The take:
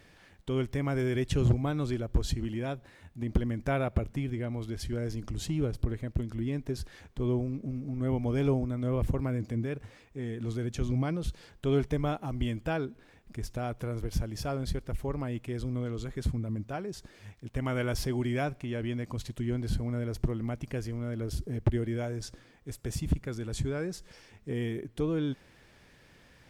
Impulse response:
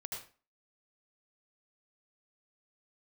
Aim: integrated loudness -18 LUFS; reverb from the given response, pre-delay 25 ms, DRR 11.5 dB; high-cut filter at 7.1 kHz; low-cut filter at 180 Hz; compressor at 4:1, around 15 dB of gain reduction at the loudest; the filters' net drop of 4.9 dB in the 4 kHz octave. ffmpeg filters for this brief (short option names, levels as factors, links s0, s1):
-filter_complex "[0:a]highpass=180,lowpass=7100,equalizer=f=4000:t=o:g=-6,acompressor=threshold=0.00708:ratio=4,asplit=2[s0][s1];[1:a]atrim=start_sample=2205,adelay=25[s2];[s1][s2]afir=irnorm=-1:irlink=0,volume=0.299[s3];[s0][s3]amix=inputs=2:normalize=0,volume=25.1"